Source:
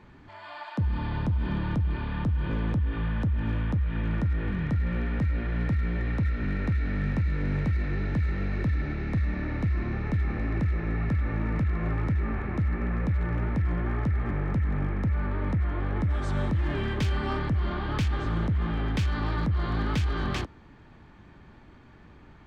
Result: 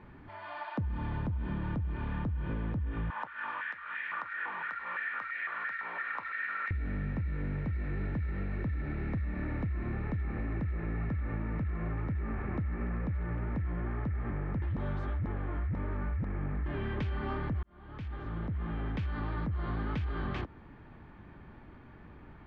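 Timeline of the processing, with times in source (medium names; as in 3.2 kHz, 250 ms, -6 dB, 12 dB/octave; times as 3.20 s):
3.10–6.71 s: step-sequenced high-pass 5.9 Hz 950–1900 Hz
14.62–16.66 s: reverse
17.63–19.68 s: fade in
whole clip: low-pass 2.5 kHz 12 dB/octave; compression, threshold -31 dBFS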